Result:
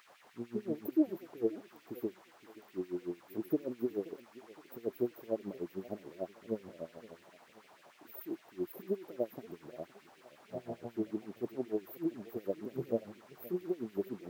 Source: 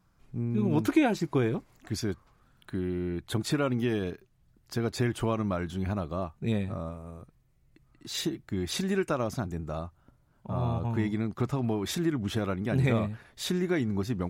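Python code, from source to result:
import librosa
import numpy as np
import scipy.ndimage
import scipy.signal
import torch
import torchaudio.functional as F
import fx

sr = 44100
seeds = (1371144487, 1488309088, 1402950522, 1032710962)

y = scipy.signal.sosfilt(scipy.signal.cheby2(4, 60, [1200.0, 8100.0], 'bandstop', fs=sr, output='sos'), x)
y = fx.dmg_noise_colour(y, sr, seeds[0], colour='brown', level_db=-57.0)
y = fx.filter_lfo_highpass(y, sr, shape='sine', hz=6.7, low_hz=630.0, high_hz=2500.0, q=2.4)
y = fx.echo_warbled(y, sr, ms=524, feedback_pct=44, rate_hz=2.8, cents=167, wet_db=-19)
y = F.gain(torch.from_numpy(y), 10.0).numpy()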